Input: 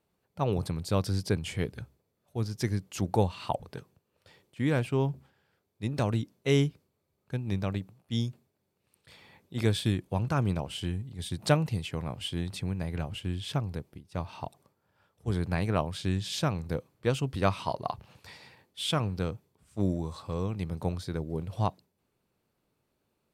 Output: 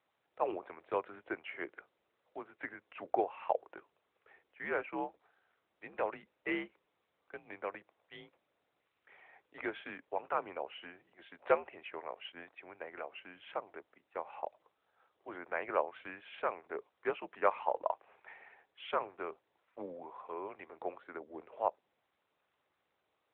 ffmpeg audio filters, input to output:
ffmpeg -i in.wav -filter_complex "[0:a]highpass=frequency=550:width_type=q:width=0.5412,highpass=frequency=550:width_type=q:width=1.307,lowpass=frequency=2500:width_type=q:width=0.5176,lowpass=frequency=2500:width_type=q:width=0.7071,lowpass=frequency=2500:width_type=q:width=1.932,afreqshift=-83,asettb=1/sr,asplit=3[link_01][link_02][link_03];[link_01]atrim=end=12.324[link_04];[link_02]atrim=start=12.32:end=12.93,asetpts=PTS-STARTPTS,afade=type=in:duration=0.004:curve=qsin,afade=type=out:start_time=0.606:duration=0.004:curve=qsin,agate=range=-33dB:threshold=-48dB:ratio=3:detection=peak[link_05];[link_03]atrim=start=12.926[link_06];[link_04][link_05]acrossfade=duration=0.004:curve1=hsin:curve2=qsin[link_07];[link_07][link_06]acrossfade=duration=0.004:curve1=qsin:curve2=hsin" -ar 8000 -c:a libopencore_amrnb -b:a 12200 out.amr

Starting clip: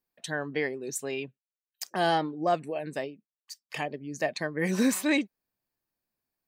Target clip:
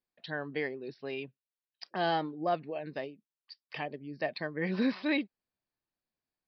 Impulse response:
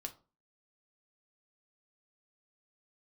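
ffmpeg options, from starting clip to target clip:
-af "aresample=11025,aresample=44100,volume=-4.5dB"

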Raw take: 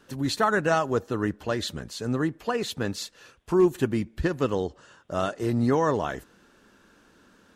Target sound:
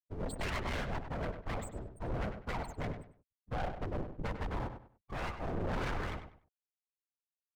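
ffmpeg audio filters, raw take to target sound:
ffmpeg -i in.wav -filter_complex "[0:a]highpass=frequency=420:poles=1,aemphasis=mode=reproduction:type=riaa,afftfilt=real='re*gte(hypot(re,im),0.0501)':imag='im*gte(hypot(re,im),0.0501)':win_size=1024:overlap=0.75,lowpass=6800,highshelf=frequency=3500:gain=9,bandreject=frequency=650:width=12,asplit=2[link_01][link_02];[link_02]alimiter=limit=-19dB:level=0:latency=1:release=16,volume=-2dB[link_03];[link_01][link_03]amix=inputs=2:normalize=0,aeval=exprs='abs(val(0))':channel_layout=same,afftfilt=real='hypot(re,im)*cos(2*PI*random(0))':imag='hypot(re,im)*sin(2*PI*random(1))':win_size=512:overlap=0.75,asoftclip=type=tanh:threshold=-31dB,asplit=2[link_04][link_05];[link_05]adelay=98,lowpass=frequency=3600:poles=1,volume=-8.5dB,asplit=2[link_06][link_07];[link_07]adelay=98,lowpass=frequency=3600:poles=1,volume=0.27,asplit=2[link_08][link_09];[link_09]adelay=98,lowpass=frequency=3600:poles=1,volume=0.27[link_10];[link_06][link_08][link_10]amix=inputs=3:normalize=0[link_11];[link_04][link_11]amix=inputs=2:normalize=0,volume=-2dB" out.wav

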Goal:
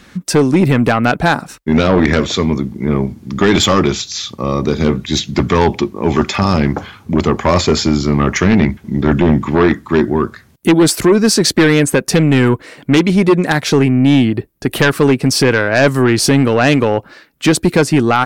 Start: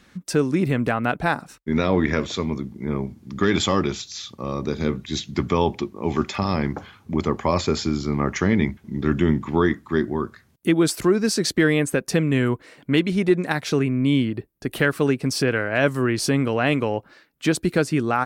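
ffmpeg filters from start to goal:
ffmpeg -i in.wav -filter_complex "[0:a]asettb=1/sr,asplit=3[link_01][link_02][link_03];[link_01]atrim=end=8.554[link_04];[link_02]atrim=start=8.55:end=9.7,asetpts=PTS-STARTPTS,afade=type=in:duration=0.004:curve=qsin,afade=type=out:start_time=1.146:duration=0.004:curve=qsin,acrossover=split=3000[link_05][link_06];[link_06]acompressor=threshold=-47dB:ratio=4:attack=1:release=60[link_07];[link_05][link_07]amix=inputs=2:normalize=0[link_08];[link_03]atrim=start=9.696[link_09];[link_04][link_08]acrossfade=duration=0.004:curve1=hsin:curve2=qsin[link_10];[link_10][link_09]acrossfade=duration=0.004:curve1=qsin:curve2=hsin,aeval=exprs='0.501*sin(PI/2*2*val(0)/0.501)':channel_layout=same,volume=1.5dB" out.wav

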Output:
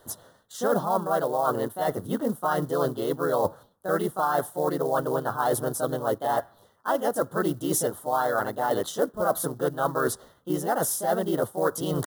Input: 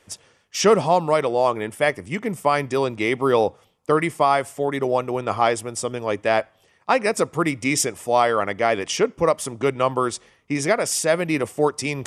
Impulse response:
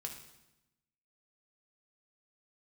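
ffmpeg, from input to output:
-filter_complex "[0:a]highshelf=frequency=3300:width_type=q:width=1.5:gain=-7,areverse,acompressor=threshold=-26dB:ratio=6,areverse,asplit=2[link_01][link_02];[link_02]asetrate=52444,aresample=44100,atempo=0.840896,volume=-2dB[link_03];[link_01][link_03]amix=inputs=2:normalize=0,acrusher=bits=6:mode=log:mix=0:aa=0.000001,aexciter=amount=1.3:drive=9:freq=9300,asetrate=46722,aresample=44100,atempo=0.943874,asuperstop=centerf=2400:order=4:qfactor=1.1,volume=2.5dB"

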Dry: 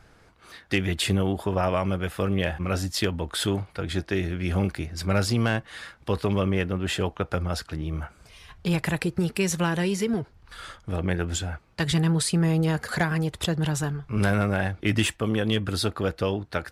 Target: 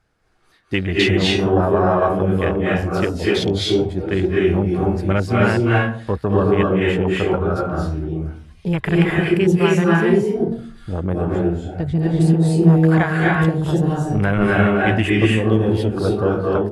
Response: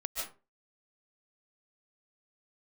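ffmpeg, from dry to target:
-filter_complex "[0:a]asettb=1/sr,asplit=3[link_01][link_02][link_03];[link_01]atrim=end=11.304[link_04];[link_02]atrim=start=11.3:end=11.99,asetpts=PTS-STARTPTS,afade=type=in:duration=0.004:curve=qsin,afade=type=out:start_time=0.686:duration=0.004:curve=qsin,acrossover=split=3000[link_05][link_06];[link_06]acompressor=threshold=-42dB:ratio=4:attack=1:release=60[link_07];[link_05][link_07]amix=inputs=2:normalize=0[link_08];[link_03]atrim=start=11.986[link_09];[link_04][link_08]acrossfade=duration=0.004:curve1=hsin:curve2=qsin[link_10];[link_10][link_09]acrossfade=duration=0.004:curve1=qsin:curve2=hsin,afwtdn=0.0316[link_11];[1:a]atrim=start_sample=2205,asetrate=25578,aresample=44100[link_12];[link_11][link_12]afir=irnorm=-1:irlink=0,volume=3.5dB"

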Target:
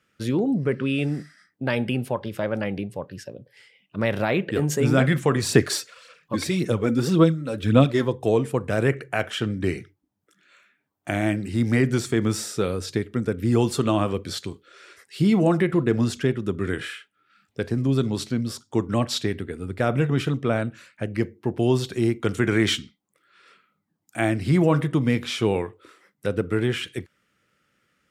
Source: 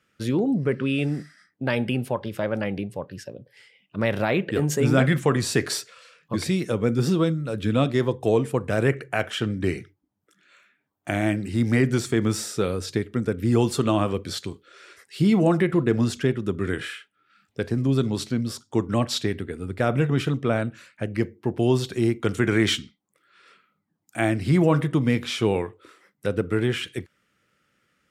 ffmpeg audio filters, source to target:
ffmpeg -i in.wav -filter_complex "[0:a]asplit=3[link_01][link_02][link_03];[link_01]afade=type=out:start_time=5.38:duration=0.02[link_04];[link_02]aphaser=in_gain=1:out_gain=1:delay=3.9:decay=0.52:speed=1.8:type=sinusoidal,afade=type=in:start_time=5.38:duration=0.02,afade=type=out:start_time=8.03:duration=0.02[link_05];[link_03]afade=type=in:start_time=8.03:duration=0.02[link_06];[link_04][link_05][link_06]amix=inputs=3:normalize=0" out.wav

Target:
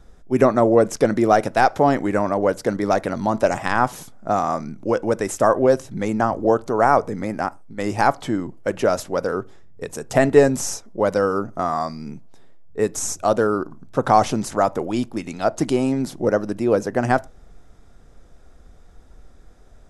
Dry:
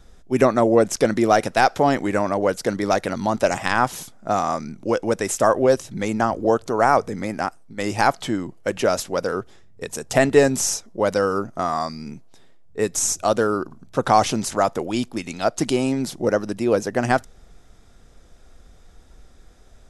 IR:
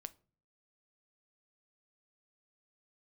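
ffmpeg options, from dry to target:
-filter_complex "[0:a]asplit=2[link_01][link_02];[1:a]atrim=start_sample=2205,atrim=end_sample=6174,lowpass=2100[link_03];[link_02][link_03]afir=irnorm=-1:irlink=0,volume=3.5dB[link_04];[link_01][link_04]amix=inputs=2:normalize=0,volume=-4dB"

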